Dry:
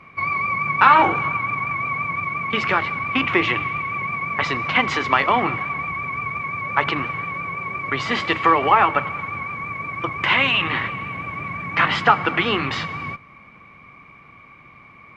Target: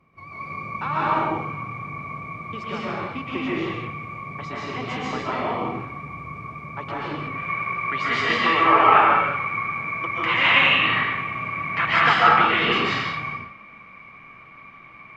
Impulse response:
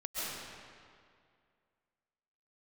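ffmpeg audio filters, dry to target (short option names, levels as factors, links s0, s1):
-filter_complex "[0:a]asetnsamples=n=441:p=0,asendcmd='7.21 equalizer g 4',equalizer=f=2000:t=o:w=2.3:g=-11[s0];[1:a]atrim=start_sample=2205,afade=t=out:st=0.42:d=0.01,atrim=end_sample=18963[s1];[s0][s1]afir=irnorm=-1:irlink=0,volume=0.562"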